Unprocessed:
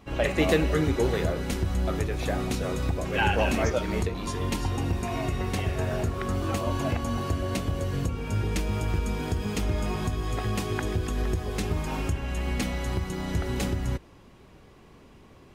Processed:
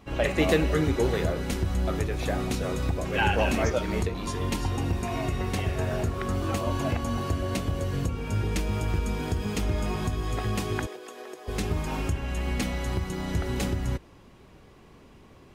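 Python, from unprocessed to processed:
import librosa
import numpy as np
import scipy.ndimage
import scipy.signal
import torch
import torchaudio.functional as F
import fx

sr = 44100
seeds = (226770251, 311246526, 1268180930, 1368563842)

y = fx.ladder_highpass(x, sr, hz=360.0, resonance_pct=30, at=(10.85, 11.47), fade=0.02)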